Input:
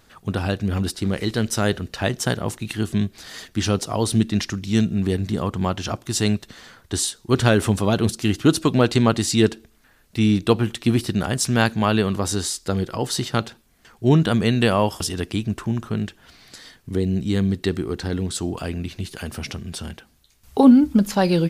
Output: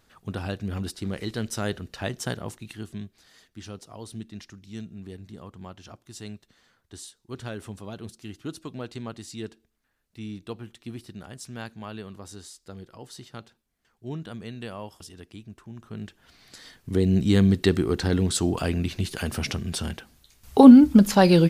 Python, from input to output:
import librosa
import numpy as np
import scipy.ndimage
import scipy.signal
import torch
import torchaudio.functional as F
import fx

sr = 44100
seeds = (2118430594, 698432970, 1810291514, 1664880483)

y = fx.gain(x, sr, db=fx.line((2.34, -8.0), (3.35, -19.0), (15.69, -19.0), (16.06, -10.0), (17.19, 2.0)))